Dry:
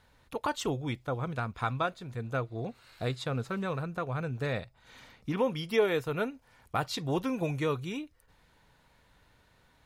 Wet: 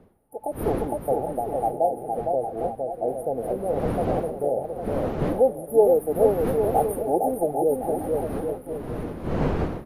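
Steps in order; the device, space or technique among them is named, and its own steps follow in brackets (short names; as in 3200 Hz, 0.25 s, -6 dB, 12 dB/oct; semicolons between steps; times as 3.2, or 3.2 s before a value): FFT band-reject 870–8900 Hz; 2.28–3.09 air absorption 430 m; HPF 520 Hz 12 dB/oct; bouncing-ball echo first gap 0.46 s, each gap 0.75×, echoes 5; smartphone video outdoors (wind noise 380 Hz -46 dBFS; AGC gain up to 13.5 dB; AAC 48 kbps 32000 Hz)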